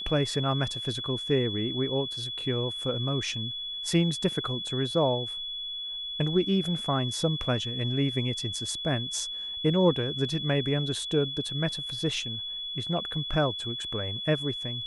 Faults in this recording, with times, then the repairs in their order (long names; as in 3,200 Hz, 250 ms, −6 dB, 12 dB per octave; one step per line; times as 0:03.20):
whistle 3,400 Hz −33 dBFS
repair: notch filter 3,400 Hz, Q 30